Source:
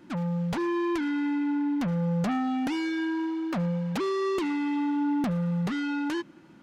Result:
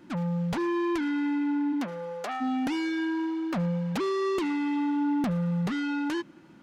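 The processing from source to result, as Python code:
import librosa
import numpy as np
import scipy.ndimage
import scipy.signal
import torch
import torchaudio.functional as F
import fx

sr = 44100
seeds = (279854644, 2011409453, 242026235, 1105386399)

y = fx.highpass(x, sr, hz=fx.line((1.72, 210.0), (2.4, 480.0)), slope=24, at=(1.72, 2.4), fade=0.02)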